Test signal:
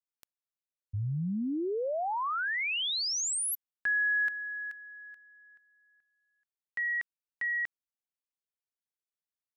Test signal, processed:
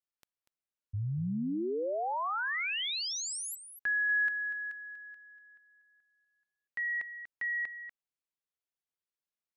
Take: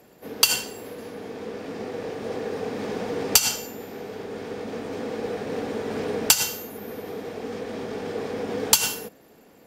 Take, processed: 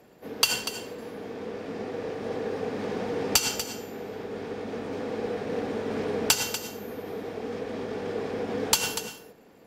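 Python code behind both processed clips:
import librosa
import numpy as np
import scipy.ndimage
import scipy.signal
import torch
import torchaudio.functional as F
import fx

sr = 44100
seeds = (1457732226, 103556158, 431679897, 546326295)

y = fx.high_shelf(x, sr, hz=6600.0, db=-8.0)
y = y + 10.0 ** (-11.0 / 20.0) * np.pad(y, (int(241 * sr / 1000.0), 0))[:len(y)]
y = F.gain(torch.from_numpy(y), -1.5).numpy()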